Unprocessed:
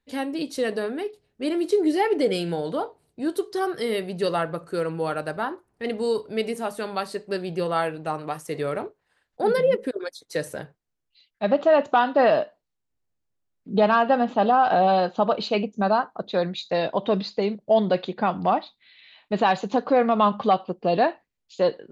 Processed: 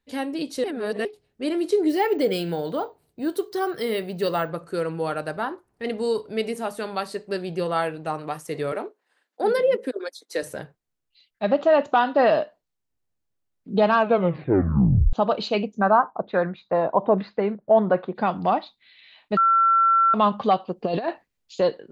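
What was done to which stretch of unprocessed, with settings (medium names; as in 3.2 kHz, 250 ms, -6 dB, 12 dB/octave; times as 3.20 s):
0.64–1.05 s: reverse
1.89–4.49 s: careless resampling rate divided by 2×, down none, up hold
8.72–10.43 s: steep high-pass 220 Hz
13.96 s: tape stop 1.17 s
15.78–18.14 s: LFO low-pass saw down 2.1 Hz -> 0.39 Hz 870–1800 Hz
19.37–20.14 s: bleep 1.35 kHz -14.5 dBFS
20.76–21.61 s: compressor with a negative ratio -23 dBFS, ratio -0.5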